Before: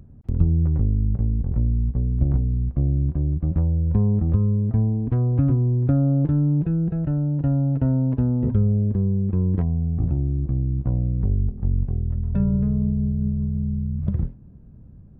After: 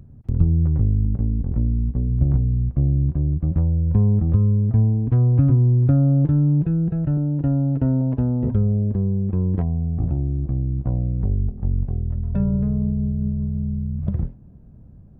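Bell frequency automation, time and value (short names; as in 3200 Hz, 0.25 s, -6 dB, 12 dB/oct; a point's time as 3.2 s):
bell +4.5 dB 0.7 oct
120 Hz
from 1.05 s 270 Hz
from 2.09 s 120 Hz
from 7.17 s 340 Hz
from 8.01 s 690 Hz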